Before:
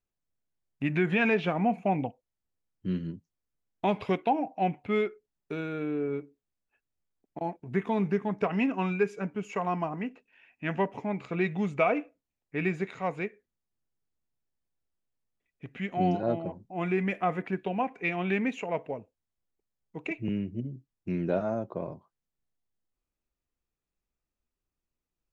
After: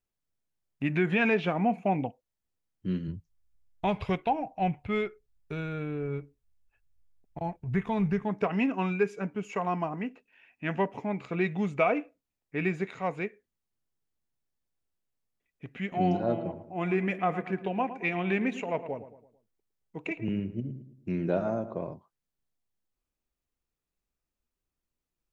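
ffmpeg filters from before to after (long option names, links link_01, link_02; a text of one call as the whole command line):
ffmpeg -i in.wav -filter_complex "[0:a]asplit=3[link_01][link_02][link_03];[link_01]afade=type=out:start_time=3.07:duration=0.02[link_04];[link_02]asubboost=boost=12:cutoff=83,afade=type=in:start_time=3.07:duration=0.02,afade=type=out:start_time=8.23:duration=0.02[link_05];[link_03]afade=type=in:start_time=8.23:duration=0.02[link_06];[link_04][link_05][link_06]amix=inputs=3:normalize=0,asettb=1/sr,asplit=3[link_07][link_08][link_09];[link_07]atrim=end=15.814[link_10];[link_08]atrim=start=15.81:end=21.82,asetpts=PTS-STARTPTS,afade=type=in:duration=0.004:curve=qsin,afade=type=out:start_time=6.006:duration=0.004:curve=qsin,asplit=2[link_11][link_12];[link_12]adelay=110,lowpass=frequency=2000:poles=1,volume=-12dB,asplit=2[link_13][link_14];[link_14]adelay=110,lowpass=frequency=2000:poles=1,volume=0.44,asplit=2[link_15][link_16];[link_16]adelay=110,lowpass=frequency=2000:poles=1,volume=0.44,asplit=2[link_17][link_18];[link_18]adelay=110,lowpass=frequency=2000:poles=1,volume=0.44[link_19];[link_11][link_13][link_15][link_17][link_19]amix=inputs=5:normalize=0,atrim=end_sample=265041[link_20];[link_09]atrim=start=21.816[link_21];[link_10][link_20]acrossfade=duration=0.004:curve1=hsin:curve2=qsin[link_22];[link_22][link_21]acrossfade=duration=0.004:curve1=qsin:curve2=hsin" out.wav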